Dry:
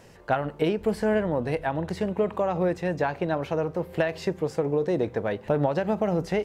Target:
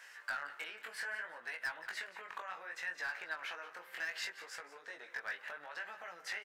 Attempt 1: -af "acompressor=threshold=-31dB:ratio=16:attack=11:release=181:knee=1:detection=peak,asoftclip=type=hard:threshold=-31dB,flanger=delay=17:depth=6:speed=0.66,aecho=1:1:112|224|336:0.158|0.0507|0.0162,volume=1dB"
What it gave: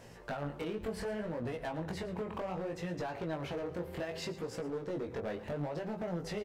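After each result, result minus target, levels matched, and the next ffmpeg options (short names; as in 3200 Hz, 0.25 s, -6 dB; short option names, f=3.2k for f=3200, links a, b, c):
2000 Hz band -12.0 dB; echo 63 ms early
-af "acompressor=threshold=-31dB:ratio=16:attack=11:release=181:knee=1:detection=peak,highpass=f=1.6k:t=q:w=3.1,asoftclip=type=hard:threshold=-31dB,flanger=delay=17:depth=6:speed=0.66,aecho=1:1:112|224|336:0.158|0.0507|0.0162,volume=1dB"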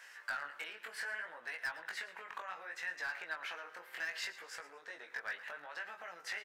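echo 63 ms early
-af "acompressor=threshold=-31dB:ratio=16:attack=11:release=181:knee=1:detection=peak,highpass=f=1.6k:t=q:w=3.1,asoftclip=type=hard:threshold=-31dB,flanger=delay=17:depth=6:speed=0.66,aecho=1:1:175|350|525:0.158|0.0507|0.0162,volume=1dB"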